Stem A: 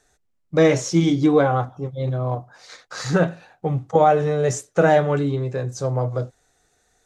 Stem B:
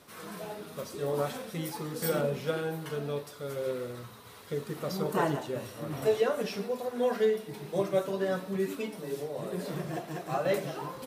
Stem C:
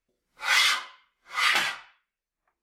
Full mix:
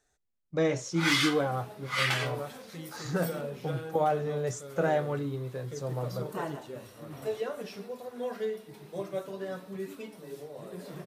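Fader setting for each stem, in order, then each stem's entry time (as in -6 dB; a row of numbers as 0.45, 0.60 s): -11.5, -7.0, -5.5 dB; 0.00, 1.20, 0.55 s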